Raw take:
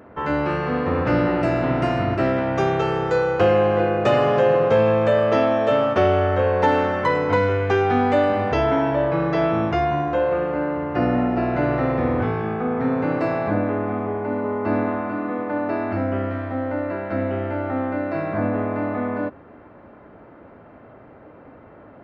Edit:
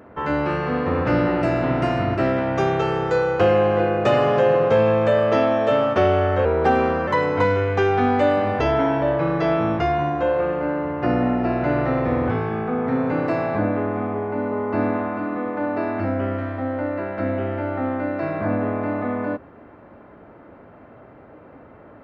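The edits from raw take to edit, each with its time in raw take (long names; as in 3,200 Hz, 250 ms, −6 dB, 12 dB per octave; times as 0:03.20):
0:06.45–0:07.00: play speed 88%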